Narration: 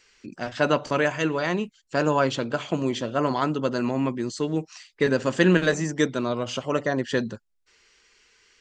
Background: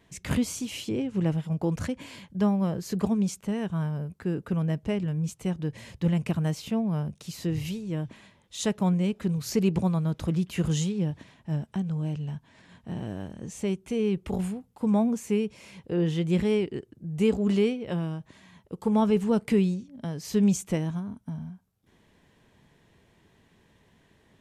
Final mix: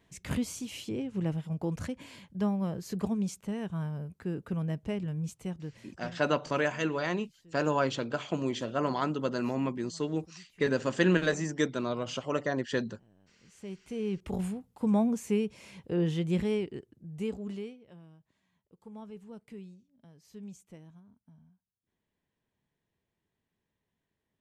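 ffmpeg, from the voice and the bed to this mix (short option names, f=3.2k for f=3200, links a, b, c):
-filter_complex "[0:a]adelay=5600,volume=-6dB[a];[1:a]volume=21dB,afade=t=out:st=5.25:d=0.97:silence=0.0668344,afade=t=in:st=13.4:d=1.15:silence=0.0473151,afade=t=out:st=15.95:d=1.91:silence=0.0944061[b];[a][b]amix=inputs=2:normalize=0"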